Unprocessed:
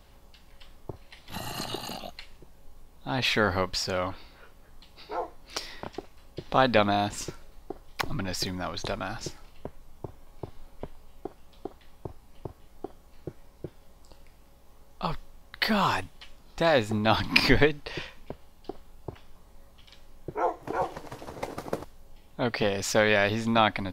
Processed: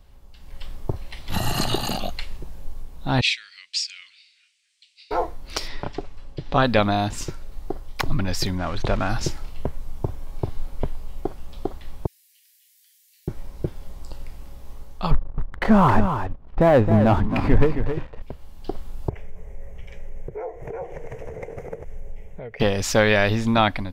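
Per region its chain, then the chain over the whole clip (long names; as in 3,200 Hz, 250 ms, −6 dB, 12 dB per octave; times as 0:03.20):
0:03.21–0:05.11: elliptic band-pass filter 2,300–8,700 Hz, stop band 50 dB + expander for the loud parts, over −40 dBFS
0:05.68–0:06.63: high-frequency loss of the air 53 metres + comb filter 7 ms, depth 38%
0:08.58–0:09.09: spike at every zero crossing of −25 dBFS + low-pass filter 2,400 Hz
0:12.06–0:13.28: Butterworth high-pass 1,700 Hz 72 dB per octave + first difference
0:15.11–0:18.22: low-pass filter 1,100 Hz + leveller curve on the samples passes 2 + single-tap delay 267 ms −8 dB
0:19.09–0:22.60: drawn EQ curve 190 Hz 0 dB, 290 Hz −12 dB, 440 Hz +9 dB, 1,200 Hz −11 dB, 2,100 Hz +5 dB, 4,300 Hz −24 dB, 6,300 Hz −5 dB, 9,200 Hz −12 dB + downward compressor 3 to 1, threshold −45 dBFS
whole clip: low-shelf EQ 130 Hz +10.5 dB; automatic gain control gain up to 13.5 dB; level −4 dB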